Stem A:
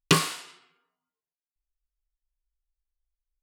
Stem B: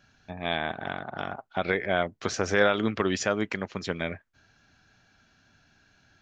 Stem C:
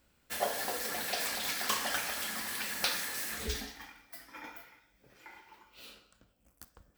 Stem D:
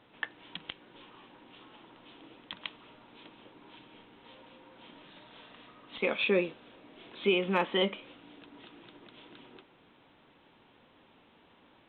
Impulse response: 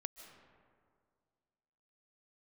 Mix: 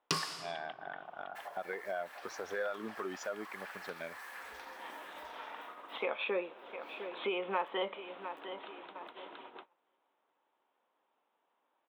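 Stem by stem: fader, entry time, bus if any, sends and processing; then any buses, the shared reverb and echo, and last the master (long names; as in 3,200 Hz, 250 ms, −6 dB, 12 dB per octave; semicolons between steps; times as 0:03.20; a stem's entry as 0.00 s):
−8.0 dB, 0.00 s, send −7 dB, no echo send, parametric band 5,100 Hz +13.5 dB 0.41 octaves
−13.0 dB, 0.00 s, no send, no echo send, high-pass filter 320 Hz 6 dB per octave; leveller curve on the samples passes 2; every bin expanded away from the loudest bin 1.5 to 1
−6.5 dB, 1.05 s, no send, echo send −4 dB, downward compressor 10 to 1, threshold −38 dBFS, peak gain reduction 12.5 dB; three-way crossover with the lows and the highs turned down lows −19 dB, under 560 Hz, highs −12 dB, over 2,600 Hz
+3.0 dB, 0.00 s, send −17.5 dB, echo send −17 dB, high-pass filter 630 Hz 12 dB per octave; tilt shelving filter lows +6.5 dB, about 890 Hz; automatic ducking −19 dB, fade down 1.40 s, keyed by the second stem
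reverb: on, RT60 2.1 s, pre-delay 110 ms
echo: repeating echo 705 ms, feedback 31%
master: noise gate −54 dBFS, range −23 dB; parametric band 1,000 Hz +7.5 dB 1.8 octaves; downward compressor 2 to 1, threshold −40 dBFS, peak gain reduction 13.5 dB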